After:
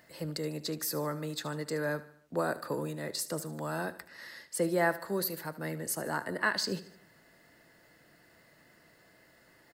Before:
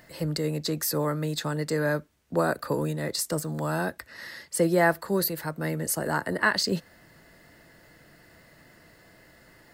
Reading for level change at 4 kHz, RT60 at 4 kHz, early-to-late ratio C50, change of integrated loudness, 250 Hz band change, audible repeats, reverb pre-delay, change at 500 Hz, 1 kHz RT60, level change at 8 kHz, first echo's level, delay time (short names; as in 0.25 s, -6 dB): -6.0 dB, none, none, -6.5 dB, -7.5 dB, 4, none, -6.5 dB, none, -6.0 dB, -16.0 dB, 75 ms